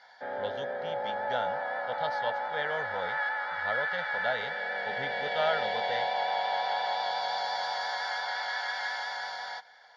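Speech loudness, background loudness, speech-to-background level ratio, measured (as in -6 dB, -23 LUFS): -36.5 LUFS, -32.0 LUFS, -4.5 dB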